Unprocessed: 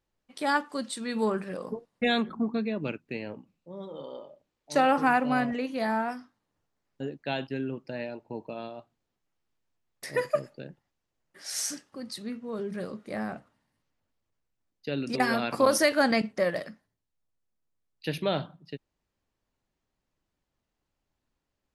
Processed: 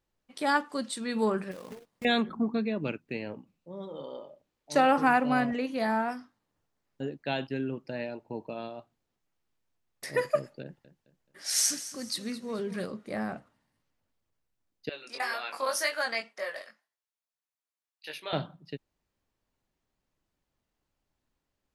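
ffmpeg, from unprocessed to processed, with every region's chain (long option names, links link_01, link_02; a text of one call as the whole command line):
ffmpeg -i in.wav -filter_complex "[0:a]asettb=1/sr,asplit=3[link_01][link_02][link_03];[link_01]atrim=end=1.514[link_04];[link_02]atrim=start=1.51:end=2.05,asetpts=PTS-STARTPTS,afade=type=in:duration=0.004:curve=qsin,afade=type=out:start_time=0.536:duration=0.004:curve=qsin,acompressor=threshold=-40dB:ratio=6:attack=3.2:release=140:knee=1:detection=peak,acrusher=bits=2:mode=log:mix=0:aa=0.000001[link_05];[link_03]atrim=start=2.046[link_06];[link_04][link_05]acrossfade=duration=0.004:curve1=hsin:curve2=qsin[link_07];[link_07][link_06]acrossfade=duration=0.004:curve1=qsin:curve2=hsin,asettb=1/sr,asplit=3[link_08][link_09][link_10];[link_08]atrim=end=10.634[link_11];[link_09]atrim=start=10.63:end=12.86,asetpts=PTS-STARTPTS,afade=type=in:duration=0.004:curve=qsin,afade=type=out:start_time=2.226:duration=0.004:curve=qsin,aecho=1:1:215|430|645|860:0.188|0.0716|0.0272|0.0103,atrim=end_sample=98343,adynamicequalizer=threshold=0.00251:dfrequency=1600:dqfactor=0.7:tfrequency=1600:tqfactor=0.7:attack=5:release=100:ratio=0.375:range=3:mode=boostabove:tftype=highshelf[link_12];[link_10]atrim=start=12.856[link_13];[link_11][link_12]acrossfade=duration=0.004:curve1=hsin:curve2=qsin[link_14];[link_14][link_13]acrossfade=duration=0.004:curve1=qsin:curve2=hsin,asettb=1/sr,asplit=3[link_15][link_16][link_17];[link_15]atrim=end=14.894[link_18];[link_16]atrim=start=14.89:end=18.33,asetpts=PTS-STARTPTS,afade=type=in:duration=0.004:curve=qsin,afade=type=out:start_time=3.436:duration=0.004:curve=qsin,highpass=840,flanger=delay=19:depth=3.5:speed=1.9[link_19];[link_17]atrim=start=18.326[link_20];[link_18][link_19]acrossfade=duration=0.004:curve1=hsin:curve2=qsin[link_21];[link_21][link_20]acrossfade=duration=0.004:curve1=qsin:curve2=hsin" out.wav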